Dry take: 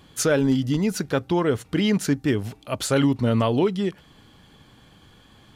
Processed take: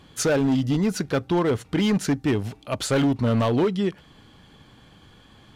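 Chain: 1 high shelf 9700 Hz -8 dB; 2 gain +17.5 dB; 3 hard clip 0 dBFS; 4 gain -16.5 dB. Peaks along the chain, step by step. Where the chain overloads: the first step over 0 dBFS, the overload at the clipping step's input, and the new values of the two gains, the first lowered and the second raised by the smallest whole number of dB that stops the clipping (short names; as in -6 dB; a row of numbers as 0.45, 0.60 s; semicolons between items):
-9.5, +8.0, 0.0, -16.5 dBFS; step 2, 8.0 dB; step 2 +9.5 dB, step 4 -8.5 dB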